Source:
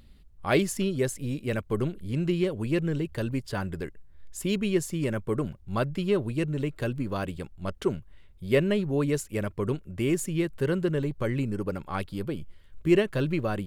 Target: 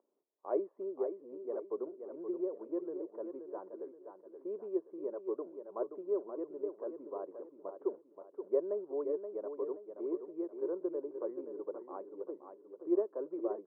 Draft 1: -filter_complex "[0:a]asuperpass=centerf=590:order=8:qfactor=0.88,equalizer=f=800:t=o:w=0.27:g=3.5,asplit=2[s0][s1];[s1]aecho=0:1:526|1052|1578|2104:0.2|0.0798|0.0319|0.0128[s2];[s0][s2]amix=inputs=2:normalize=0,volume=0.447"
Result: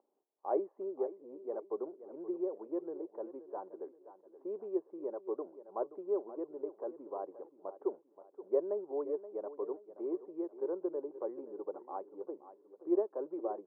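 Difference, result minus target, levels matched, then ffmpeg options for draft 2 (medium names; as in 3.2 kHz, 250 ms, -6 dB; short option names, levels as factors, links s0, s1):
1 kHz band +5.0 dB; echo-to-direct -6 dB
-filter_complex "[0:a]asuperpass=centerf=590:order=8:qfactor=0.88,equalizer=f=800:t=o:w=0.27:g=-7,asplit=2[s0][s1];[s1]aecho=0:1:526|1052|1578|2104|2630:0.398|0.159|0.0637|0.0255|0.0102[s2];[s0][s2]amix=inputs=2:normalize=0,volume=0.447"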